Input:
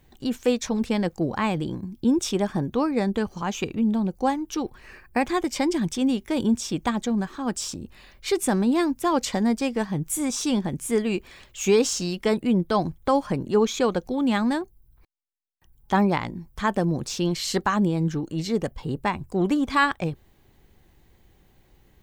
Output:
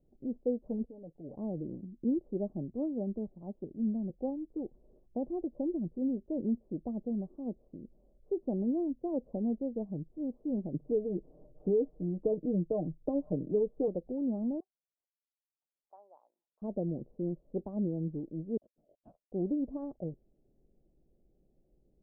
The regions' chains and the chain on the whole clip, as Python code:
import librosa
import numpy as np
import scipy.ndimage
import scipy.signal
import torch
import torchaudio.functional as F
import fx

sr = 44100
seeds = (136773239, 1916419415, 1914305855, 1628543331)

y = fx.chain(x, sr, fx.level_steps(step_db=18),
    fx.comb(ms=7.0, depth=0.62), at=(0.85, 1.36))
y = fx.chain(y, sr, fx.peak_eq(hz=480.0, db=-7.0, octaves=0.23),
    fx.band_widen(depth_pct=70), at=(2.53, 4.1))
y = fx.chain(y, sr, fx.comb(ms=6.6, depth=0.64),
    fx.band_squash(depth_pct=70), at=(10.74, 13.88))
y = fx.chain(y, sr, fx.highpass(hz=1000.0, slope=24),
    fx.high_shelf(hz=3100.0, db=-9.0),
    fx.quant_companded(bits=8), at=(14.6, 16.62))
y = fx.chain(y, sr, fx.highpass(hz=180.0, slope=12),
    fx.freq_invert(carrier_hz=3500),
    fx.upward_expand(threshold_db=-37.0, expansion=1.5), at=(18.57, 19.32))
y = scipy.signal.sosfilt(scipy.signal.ellip(4, 1.0, 70, 620.0, 'lowpass', fs=sr, output='sos'), y)
y = fx.peak_eq(y, sr, hz=87.0, db=-13.0, octaves=0.89)
y = y * 10.0 ** (-8.5 / 20.0)